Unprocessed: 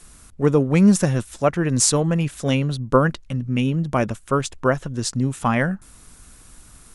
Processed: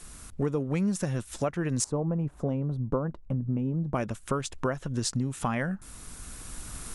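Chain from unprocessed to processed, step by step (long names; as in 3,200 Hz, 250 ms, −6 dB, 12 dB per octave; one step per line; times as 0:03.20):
camcorder AGC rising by 5.9 dB per second
0:01.84–0:03.95: drawn EQ curve 930 Hz 0 dB, 1,800 Hz −16 dB, 3,400 Hz −24 dB
downward compressor 4 to 1, threshold −27 dBFS, peak gain reduction 14.5 dB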